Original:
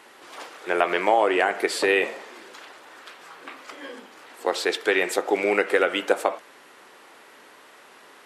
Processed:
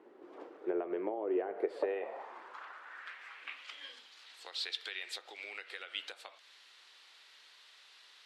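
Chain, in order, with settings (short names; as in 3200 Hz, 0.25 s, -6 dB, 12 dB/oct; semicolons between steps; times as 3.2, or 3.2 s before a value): dynamic EQ 6600 Hz, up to -5 dB, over -44 dBFS, Q 1.4; compressor 6:1, threshold -26 dBFS, peak gain reduction 12 dB; band-pass sweep 350 Hz -> 4000 Hz, 1.28–3.98; gain +1 dB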